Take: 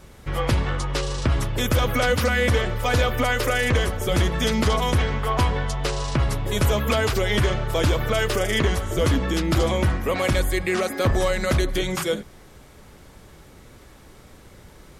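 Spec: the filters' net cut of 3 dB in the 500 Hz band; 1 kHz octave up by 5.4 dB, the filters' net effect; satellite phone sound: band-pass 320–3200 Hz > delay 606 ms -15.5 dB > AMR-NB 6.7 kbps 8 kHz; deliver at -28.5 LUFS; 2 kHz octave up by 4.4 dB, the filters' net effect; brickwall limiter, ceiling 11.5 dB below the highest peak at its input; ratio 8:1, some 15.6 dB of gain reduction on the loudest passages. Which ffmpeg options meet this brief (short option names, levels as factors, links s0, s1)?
-af "equalizer=f=500:t=o:g=-4.5,equalizer=f=1000:t=o:g=7,equalizer=f=2000:t=o:g=4,acompressor=threshold=0.0251:ratio=8,alimiter=level_in=2.66:limit=0.0631:level=0:latency=1,volume=0.376,highpass=320,lowpass=3200,aecho=1:1:606:0.168,volume=7.5" -ar 8000 -c:a libopencore_amrnb -b:a 6700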